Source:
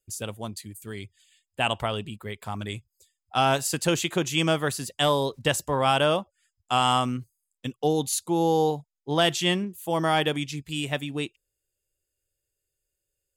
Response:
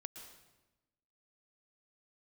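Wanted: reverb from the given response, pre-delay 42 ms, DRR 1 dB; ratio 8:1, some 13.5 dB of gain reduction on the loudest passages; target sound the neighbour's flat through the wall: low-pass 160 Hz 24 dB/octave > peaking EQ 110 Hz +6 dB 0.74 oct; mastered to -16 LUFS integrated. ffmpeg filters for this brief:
-filter_complex "[0:a]acompressor=threshold=0.0251:ratio=8,asplit=2[s0][s1];[1:a]atrim=start_sample=2205,adelay=42[s2];[s1][s2]afir=irnorm=-1:irlink=0,volume=1.41[s3];[s0][s3]amix=inputs=2:normalize=0,lowpass=f=160:w=0.5412,lowpass=f=160:w=1.3066,equalizer=f=110:t=o:w=0.74:g=6,volume=20"

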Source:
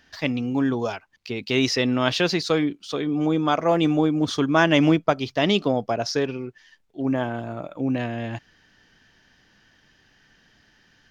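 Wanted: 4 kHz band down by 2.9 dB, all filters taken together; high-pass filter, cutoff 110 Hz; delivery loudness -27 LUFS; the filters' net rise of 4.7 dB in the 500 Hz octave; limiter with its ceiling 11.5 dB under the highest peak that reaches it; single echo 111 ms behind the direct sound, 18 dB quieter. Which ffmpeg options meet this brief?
-af "highpass=110,equalizer=f=500:t=o:g=6,equalizer=f=4000:t=o:g=-4,alimiter=limit=0.211:level=0:latency=1,aecho=1:1:111:0.126,volume=0.75"

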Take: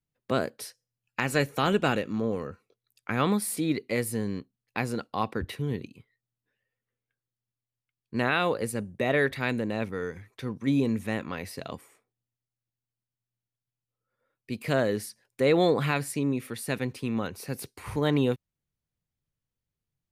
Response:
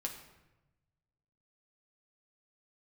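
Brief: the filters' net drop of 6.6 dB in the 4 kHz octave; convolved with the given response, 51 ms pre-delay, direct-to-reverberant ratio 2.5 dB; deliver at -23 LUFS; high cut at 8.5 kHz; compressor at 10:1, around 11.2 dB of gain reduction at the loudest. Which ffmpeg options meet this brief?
-filter_complex "[0:a]lowpass=8500,equalizer=f=4000:t=o:g=-8.5,acompressor=threshold=0.0316:ratio=10,asplit=2[s0][s1];[1:a]atrim=start_sample=2205,adelay=51[s2];[s1][s2]afir=irnorm=-1:irlink=0,volume=0.75[s3];[s0][s3]amix=inputs=2:normalize=0,volume=3.98"

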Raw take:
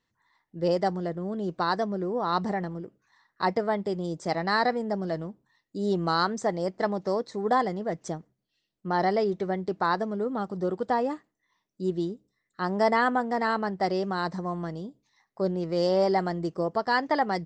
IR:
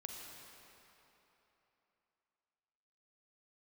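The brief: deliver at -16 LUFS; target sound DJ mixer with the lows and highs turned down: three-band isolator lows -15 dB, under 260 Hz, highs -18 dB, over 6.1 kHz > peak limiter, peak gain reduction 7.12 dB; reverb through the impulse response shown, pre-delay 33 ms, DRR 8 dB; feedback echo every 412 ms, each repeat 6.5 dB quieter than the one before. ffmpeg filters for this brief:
-filter_complex "[0:a]aecho=1:1:412|824|1236|1648|2060|2472:0.473|0.222|0.105|0.0491|0.0231|0.0109,asplit=2[s0][s1];[1:a]atrim=start_sample=2205,adelay=33[s2];[s1][s2]afir=irnorm=-1:irlink=0,volume=0.531[s3];[s0][s3]amix=inputs=2:normalize=0,acrossover=split=260 6100:gain=0.178 1 0.126[s4][s5][s6];[s4][s5][s6]amix=inputs=3:normalize=0,volume=4.73,alimiter=limit=0.668:level=0:latency=1"

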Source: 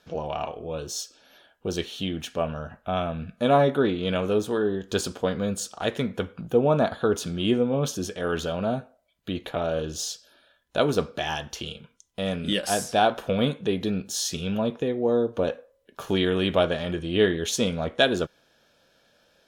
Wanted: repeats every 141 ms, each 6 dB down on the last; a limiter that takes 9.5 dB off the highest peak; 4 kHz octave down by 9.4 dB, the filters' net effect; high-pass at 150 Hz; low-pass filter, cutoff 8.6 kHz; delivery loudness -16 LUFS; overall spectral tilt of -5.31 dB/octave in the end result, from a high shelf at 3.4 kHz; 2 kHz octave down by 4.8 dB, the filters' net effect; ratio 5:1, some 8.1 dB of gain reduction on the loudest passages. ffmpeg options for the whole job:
-af "highpass=150,lowpass=8600,equalizer=f=2000:t=o:g=-3.5,highshelf=f=3400:g=-4.5,equalizer=f=4000:t=o:g=-8,acompressor=threshold=0.0562:ratio=5,alimiter=limit=0.0708:level=0:latency=1,aecho=1:1:141|282|423|564|705|846:0.501|0.251|0.125|0.0626|0.0313|0.0157,volume=7.5"

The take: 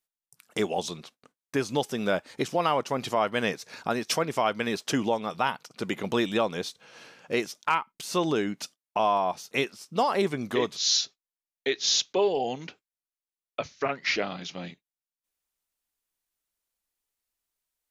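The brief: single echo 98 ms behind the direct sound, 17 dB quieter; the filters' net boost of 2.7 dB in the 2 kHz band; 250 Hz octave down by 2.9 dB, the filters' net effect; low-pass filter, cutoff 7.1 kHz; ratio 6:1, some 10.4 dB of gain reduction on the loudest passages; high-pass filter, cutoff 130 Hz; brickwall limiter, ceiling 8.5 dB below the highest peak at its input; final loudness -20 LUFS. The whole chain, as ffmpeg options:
-af "highpass=130,lowpass=7100,equalizer=f=250:t=o:g=-3.5,equalizer=f=2000:t=o:g=3.5,acompressor=threshold=0.0282:ratio=6,alimiter=level_in=1.06:limit=0.0631:level=0:latency=1,volume=0.944,aecho=1:1:98:0.141,volume=7.94"

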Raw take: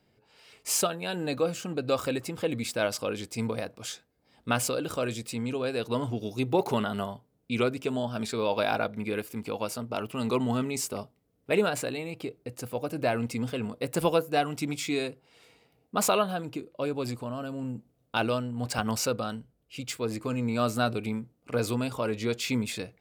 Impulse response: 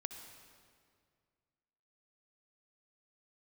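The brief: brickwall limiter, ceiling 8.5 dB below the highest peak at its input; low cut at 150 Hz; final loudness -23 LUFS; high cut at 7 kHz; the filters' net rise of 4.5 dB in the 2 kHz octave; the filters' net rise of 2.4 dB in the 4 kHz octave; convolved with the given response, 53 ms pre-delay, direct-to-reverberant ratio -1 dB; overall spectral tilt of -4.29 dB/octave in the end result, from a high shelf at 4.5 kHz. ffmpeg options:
-filter_complex "[0:a]highpass=150,lowpass=7000,equalizer=f=2000:t=o:g=6.5,equalizer=f=4000:t=o:g=4,highshelf=f=4500:g=-5.5,alimiter=limit=0.158:level=0:latency=1,asplit=2[s0][s1];[1:a]atrim=start_sample=2205,adelay=53[s2];[s1][s2]afir=irnorm=-1:irlink=0,volume=1.41[s3];[s0][s3]amix=inputs=2:normalize=0,volume=1.78"

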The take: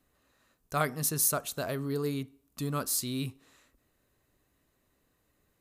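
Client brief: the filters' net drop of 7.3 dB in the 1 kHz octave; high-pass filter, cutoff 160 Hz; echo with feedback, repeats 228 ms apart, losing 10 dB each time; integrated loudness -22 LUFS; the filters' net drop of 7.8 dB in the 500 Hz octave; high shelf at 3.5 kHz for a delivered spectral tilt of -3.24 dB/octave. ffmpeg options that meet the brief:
-af "highpass=160,equalizer=f=500:t=o:g=-7.5,equalizer=f=1000:t=o:g=-8,highshelf=f=3500:g=-5,aecho=1:1:228|456|684|912:0.316|0.101|0.0324|0.0104,volume=5.01"

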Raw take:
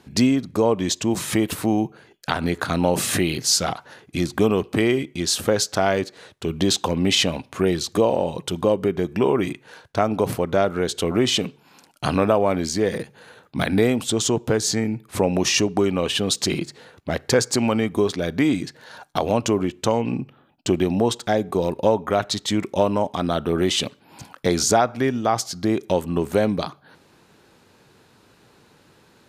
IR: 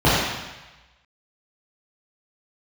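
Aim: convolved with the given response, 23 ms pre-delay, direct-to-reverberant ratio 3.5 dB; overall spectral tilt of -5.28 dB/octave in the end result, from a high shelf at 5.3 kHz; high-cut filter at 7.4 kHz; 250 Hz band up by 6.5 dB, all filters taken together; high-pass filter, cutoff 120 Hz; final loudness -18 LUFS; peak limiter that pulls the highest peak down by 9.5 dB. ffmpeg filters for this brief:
-filter_complex "[0:a]highpass=120,lowpass=7400,equalizer=f=250:t=o:g=8.5,highshelf=f=5300:g=4,alimiter=limit=0.299:level=0:latency=1,asplit=2[s0][s1];[1:a]atrim=start_sample=2205,adelay=23[s2];[s1][s2]afir=irnorm=-1:irlink=0,volume=0.0398[s3];[s0][s3]amix=inputs=2:normalize=0,volume=1.12"

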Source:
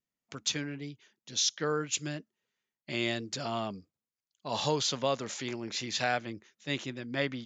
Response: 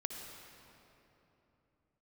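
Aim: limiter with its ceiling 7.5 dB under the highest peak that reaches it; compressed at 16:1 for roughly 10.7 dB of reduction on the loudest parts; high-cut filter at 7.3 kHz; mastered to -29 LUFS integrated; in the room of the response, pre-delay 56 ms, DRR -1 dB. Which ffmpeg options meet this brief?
-filter_complex "[0:a]lowpass=7300,acompressor=threshold=0.0178:ratio=16,alimiter=level_in=2.11:limit=0.0631:level=0:latency=1,volume=0.473,asplit=2[s0][s1];[1:a]atrim=start_sample=2205,adelay=56[s2];[s1][s2]afir=irnorm=-1:irlink=0,volume=1.12[s3];[s0][s3]amix=inputs=2:normalize=0,volume=3.16"

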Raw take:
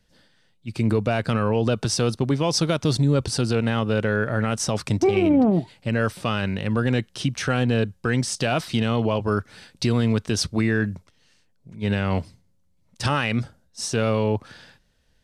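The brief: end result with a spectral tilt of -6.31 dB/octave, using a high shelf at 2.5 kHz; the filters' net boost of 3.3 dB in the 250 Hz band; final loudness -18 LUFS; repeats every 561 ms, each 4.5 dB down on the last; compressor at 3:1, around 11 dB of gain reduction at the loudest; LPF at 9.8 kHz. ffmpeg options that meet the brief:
-af "lowpass=9800,equalizer=f=250:t=o:g=4,highshelf=f=2500:g=-6,acompressor=threshold=0.0447:ratio=3,aecho=1:1:561|1122|1683|2244|2805|3366|3927|4488|5049:0.596|0.357|0.214|0.129|0.0772|0.0463|0.0278|0.0167|0.01,volume=3.35"

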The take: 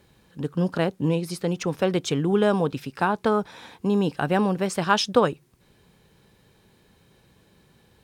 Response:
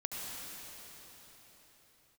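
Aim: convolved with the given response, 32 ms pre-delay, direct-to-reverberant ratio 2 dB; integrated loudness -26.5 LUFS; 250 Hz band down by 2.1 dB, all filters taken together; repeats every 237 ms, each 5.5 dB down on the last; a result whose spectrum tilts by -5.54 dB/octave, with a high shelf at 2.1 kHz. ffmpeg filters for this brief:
-filter_complex "[0:a]equalizer=f=250:t=o:g=-3,highshelf=f=2100:g=-5.5,aecho=1:1:237|474|711|948|1185|1422|1659:0.531|0.281|0.149|0.079|0.0419|0.0222|0.0118,asplit=2[s0][s1];[1:a]atrim=start_sample=2205,adelay=32[s2];[s1][s2]afir=irnorm=-1:irlink=0,volume=0.596[s3];[s0][s3]amix=inputs=2:normalize=0,volume=0.668"

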